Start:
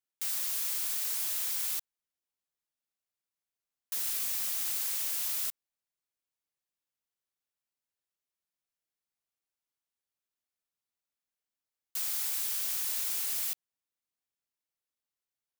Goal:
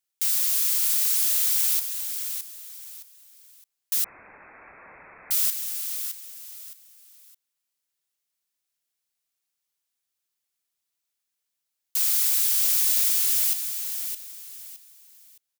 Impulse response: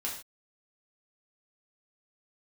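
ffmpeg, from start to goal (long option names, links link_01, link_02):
-filter_complex "[0:a]asettb=1/sr,asplit=3[link_01][link_02][link_03];[link_01]atrim=end=12.004[link_04];[link_02]atrim=start=12:end=13.09,asetpts=PTS-STARTPTS,afade=type=in:duration=0.004:curve=qsin,afade=type=out:start_time=1.086:duration=0.004:curve=qsin,aeval=exprs='val(0)+0.5*0.00668*sgn(val(0))':channel_layout=same[link_05];[link_03]atrim=start=13.086[link_06];[link_04][link_05]acrossfade=duration=0.004:curve1=hsin:curve2=qsin[link_07];[link_07][link_06]acrossfade=duration=0.004:curve1=qsin:curve2=hsin,asplit=2[link_08][link_09];[link_09]aecho=0:1:615|1230|1845:0.398|0.115|0.0335[link_10];[link_08][link_10]amix=inputs=2:normalize=0,asettb=1/sr,asplit=3[link_11][link_12][link_13];[link_11]atrim=end=4.044[link_14];[link_12]atrim=start=4.04:end=5.31,asetpts=PTS-STARTPTS,afade=type=in:duration=0.004:curve=qsin,afade=type=out:start_time=1.266:duration=0.004:curve=qsin,lowpass=frequency=2300:width_type=q:width=0.5098,lowpass=frequency=2300:width_type=q:width=0.6013,lowpass=frequency=2300:width_type=q:width=0.9,lowpass=frequency=2300:width_type=q:width=2.563,afreqshift=-2700[link_15];[link_13]atrim=start=5.306[link_16];[link_14][link_15]acrossfade=duration=0.004:curve1=hsin:curve2=qsin[link_17];[link_17][link_16]acrossfade=duration=0.004:curve1=qsin:curve2=hsin,highshelf=frequency=2100:gain=10"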